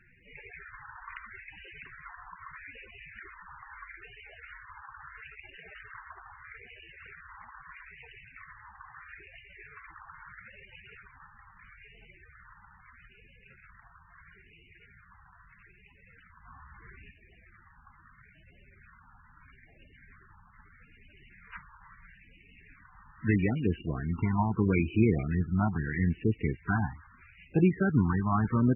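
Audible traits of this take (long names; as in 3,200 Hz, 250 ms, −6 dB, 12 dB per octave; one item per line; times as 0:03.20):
a quantiser's noise floor 10 bits, dither none
phaser sweep stages 4, 0.77 Hz, lowest notch 470–1,200 Hz
MP3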